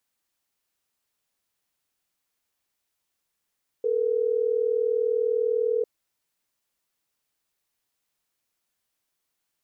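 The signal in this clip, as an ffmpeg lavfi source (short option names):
-f lavfi -i "aevalsrc='0.0631*(sin(2*PI*440*t)+sin(2*PI*480*t))*clip(min(mod(t,6),2-mod(t,6))/0.005,0,1)':d=3.12:s=44100"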